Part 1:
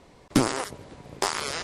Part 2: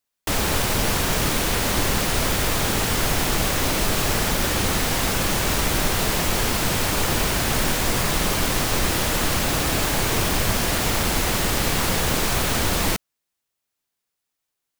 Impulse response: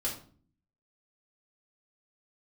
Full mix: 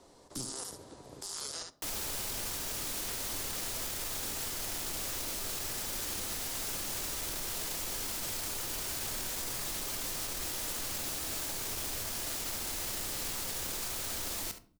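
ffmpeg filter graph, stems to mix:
-filter_complex "[0:a]equalizer=frequency=2300:width=1.6:gain=-9.5,volume=-5.5dB,asplit=3[link_01][link_02][link_03];[link_02]volume=-13dB[link_04];[link_03]volume=-9dB[link_05];[1:a]alimiter=limit=-14dB:level=0:latency=1,adelay=1550,volume=-13.5dB,asplit=3[link_06][link_07][link_08];[link_07]volume=-13.5dB[link_09];[link_08]volume=-16dB[link_10];[2:a]atrim=start_sample=2205[link_11];[link_04][link_09]amix=inputs=2:normalize=0[link_12];[link_12][link_11]afir=irnorm=-1:irlink=0[link_13];[link_05][link_10]amix=inputs=2:normalize=0,aecho=0:1:71:1[link_14];[link_01][link_06][link_13][link_14]amix=inputs=4:normalize=0,bass=frequency=250:gain=-6,treble=frequency=4000:gain=7,acrossover=split=210|3000[link_15][link_16][link_17];[link_16]acompressor=threshold=-40dB:ratio=6[link_18];[link_15][link_18][link_17]amix=inputs=3:normalize=0,alimiter=level_in=3.5dB:limit=-24dB:level=0:latency=1:release=14,volume=-3.5dB"

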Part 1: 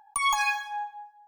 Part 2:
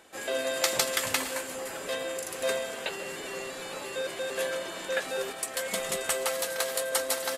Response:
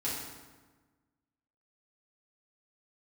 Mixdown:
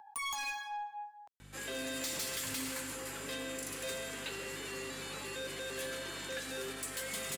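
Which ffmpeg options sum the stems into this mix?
-filter_complex "[0:a]highshelf=frequency=4400:gain=-7,volume=1.5dB[link_01];[1:a]equalizer=frequency=650:width_type=o:width=0.9:gain=-10.5,acontrast=76,aeval=exprs='val(0)+0.00891*(sin(2*PI*50*n/s)+sin(2*PI*2*50*n/s)/2+sin(2*PI*3*50*n/s)/3+sin(2*PI*4*50*n/s)/4+sin(2*PI*5*50*n/s)/5)':channel_layout=same,adelay=1400,volume=-10.5dB,asplit=2[link_02][link_03];[link_03]volume=-10dB[link_04];[2:a]atrim=start_sample=2205[link_05];[link_04][link_05]afir=irnorm=-1:irlink=0[link_06];[link_01][link_02][link_06]amix=inputs=3:normalize=0,acrossover=split=440|3000[link_07][link_08][link_09];[link_08]acompressor=threshold=-38dB:ratio=5[link_10];[link_07][link_10][link_09]amix=inputs=3:normalize=0,highpass=66,asoftclip=type=tanh:threshold=-34dB"

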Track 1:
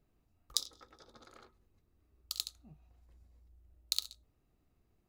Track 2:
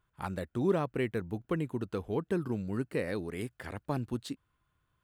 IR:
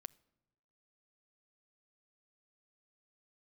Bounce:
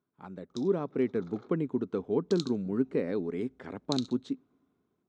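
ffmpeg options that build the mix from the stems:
-filter_complex "[0:a]volume=-5.5dB,afade=type=in:start_time=0.86:duration=0.63:silence=0.473151[link_01];[1:a]volume=-12dB,asplit=2[link_02][link_03];[link_03]volume=-5.5dB[link_04];[2:a]atrim=start_sample=2205[link_05];[link_04][link_05]afir=irnorm=-1:irlink=0[link_06];[link_01][link_02][link_06]amix=inputs=3:normalize=0,dynaudnorm=framelen=230:gausssize=7:maxgain=9dB,highpass=150,equalizer=frequency=180:width_type=q:width=4:gain=5,equalizer=frequency=260:width_type=q:width=4:gain=9,equalizer=frequency=410:width_type=q:width=4:gain=7,equalizer=frequency=1800:width_type=q:width=4:gain=-6,equalizer=frequency=2800:width_type=q:width=4:gain=-8,equalizer=frequency=4700:width_type=q:width=4:gain=-10,lowpass=frequency=5700:width=0.5412,lowpass=frequency=5700:width=1.3066"

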